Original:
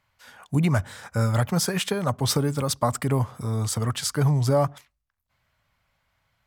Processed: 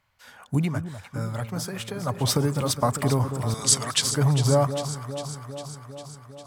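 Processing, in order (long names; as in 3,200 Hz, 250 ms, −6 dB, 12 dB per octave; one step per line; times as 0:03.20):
0:00.54–0:02.18: duck −8 dB, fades 0.19 s
0:03.54–0:04.02: meter weighting curve ITU-R 468
delay that swaps between a low-pass and a high-pass 201 ms, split 1,100 Hz, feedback 81%, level −9 dB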